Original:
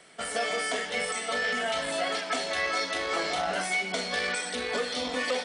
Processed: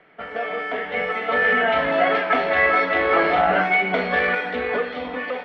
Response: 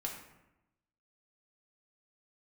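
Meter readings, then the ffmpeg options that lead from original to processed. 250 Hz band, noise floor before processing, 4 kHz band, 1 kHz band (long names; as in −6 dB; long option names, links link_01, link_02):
+9.5 dB, −37 dBFS, −2.5 dB, +11.0 dB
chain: -filter_complex "[0:a]asplit=2[link_01][link_02];[1:a]atrim=start_sample=2205,asetrate=66150,aresample=44100[link_03];[link_02][link_03]afir=irnorm=-1:irlink=0,volume=-4dB[link_04];[link_01][link_04]amix=inputs=2:normalize=0,dynaudnorm=framelen=250:gausssize=9:maxgain=9.5dB,lowpass=frequency=2400:width=0.5412,lowpass=frequency=2400:width=1.3066"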